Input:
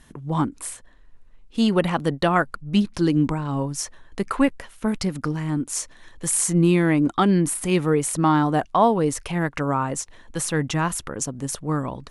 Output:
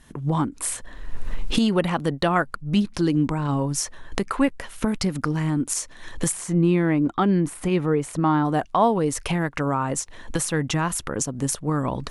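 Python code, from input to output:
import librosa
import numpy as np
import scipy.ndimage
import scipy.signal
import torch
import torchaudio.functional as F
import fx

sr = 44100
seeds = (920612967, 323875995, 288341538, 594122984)

y = fx.recorder_agc(x, sr, target_db=-13.5, rise_db_per_s=35.0, max_gain_db=30)
y = fx.lowpass(y, sr, hz=2200.0, slope=6, at=(6.32, 8.45))
y = y * 10.0 ** (-1.5 / 20.0)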